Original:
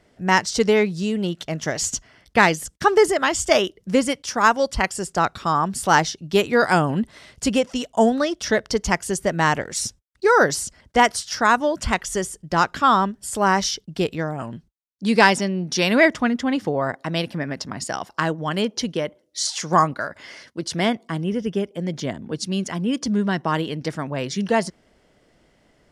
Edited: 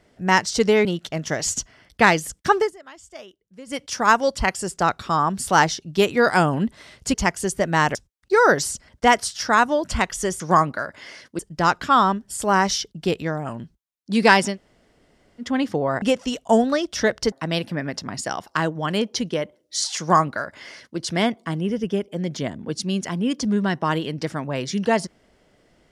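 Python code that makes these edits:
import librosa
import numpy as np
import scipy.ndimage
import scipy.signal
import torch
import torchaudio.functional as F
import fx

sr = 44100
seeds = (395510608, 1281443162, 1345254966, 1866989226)

y = fx.edit(x, sr, fx.cut(start_s=0.85, length_s=0.36),
    fx.fade_down_up(start_s=2.9, length_s=1.29, db=-23.0, fade_s=0.17),
    fx.move(start_s=7.5, length_s=1.3, to_s=16.95),
    fx.cut(start_s=9.61, length_s=0.26),
    fx.room_tone_fill(start_s=15.46, length_s=0.9, crossfade_s=0.1),
    fx.duplicate(start_s=19.62, length_s=0.99, to_s=12.32), tone=tone)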